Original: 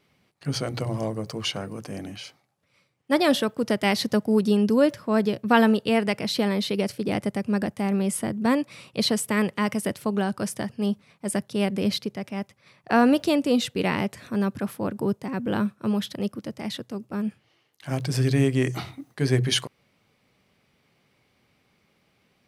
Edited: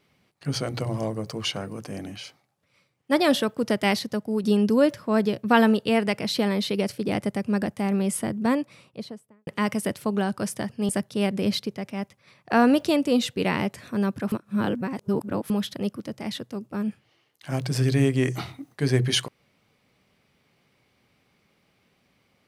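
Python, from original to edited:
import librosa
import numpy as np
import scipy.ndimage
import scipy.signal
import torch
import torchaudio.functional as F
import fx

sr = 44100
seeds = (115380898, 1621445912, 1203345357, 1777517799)

y = fx.studio_fade_out(x, sr, start_s=8.27, length_s=1.2)
y = fx.edit(y, sr, fx.clip_gain(start_s=3.99, length_s=0.45, db=-5.5),
    fx.cut(start_s=10.89, length_s=0.39),
    fx.reverse_span(start_s=14.71, length_s=1.18), tone=tone)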